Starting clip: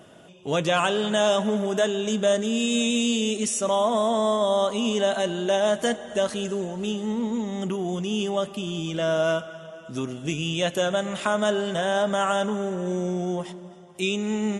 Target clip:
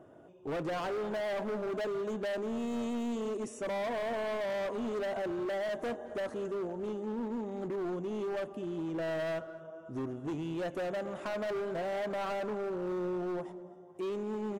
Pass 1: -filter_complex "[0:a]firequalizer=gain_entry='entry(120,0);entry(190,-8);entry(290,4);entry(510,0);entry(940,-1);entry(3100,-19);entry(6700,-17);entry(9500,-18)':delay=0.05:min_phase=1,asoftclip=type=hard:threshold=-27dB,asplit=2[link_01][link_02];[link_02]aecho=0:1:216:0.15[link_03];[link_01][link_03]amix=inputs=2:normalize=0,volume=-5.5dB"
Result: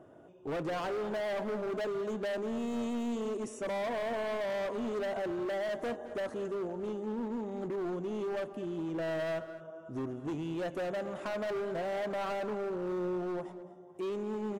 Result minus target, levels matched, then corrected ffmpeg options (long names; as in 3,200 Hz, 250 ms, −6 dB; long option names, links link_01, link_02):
echo-to-direct +7 dB
-filter_complex "[0:a]firequalizer=gain_entry='entry(120,0);entry(190,-8);entry(290,4);entry(510,0);entry(940,-1);entry(3100,-19);entry(6700,-17);entry(9500,-18)':delay=0.05:min_phase=1,asoftclip=type=hard:threshold=-27dB,asplit=2[link_01][link_02];[link_02]aecho=0:1:216:0.0668[link_03];[link_01][link_03]amix=inputs=2:normalize=0,volume=-5.5dB"